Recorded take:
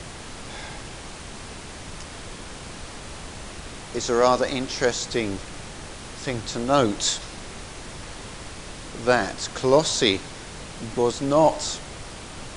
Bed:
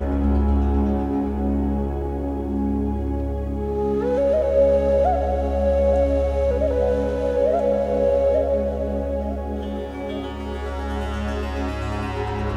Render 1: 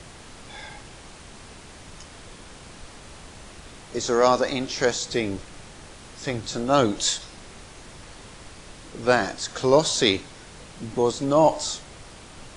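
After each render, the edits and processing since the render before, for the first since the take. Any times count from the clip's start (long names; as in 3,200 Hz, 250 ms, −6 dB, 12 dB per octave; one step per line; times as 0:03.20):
noise reduction from a noise print 6 dB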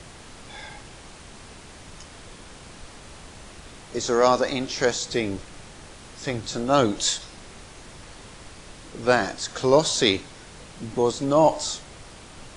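no processing that can be heard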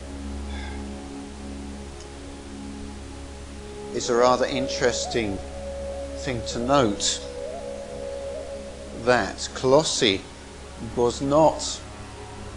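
mix in bed −14.5 dB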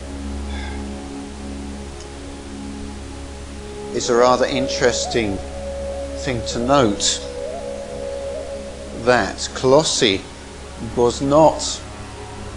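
level +5.5 dB
brickwall limiter −1 dBFS, peak gain reduction 3 dB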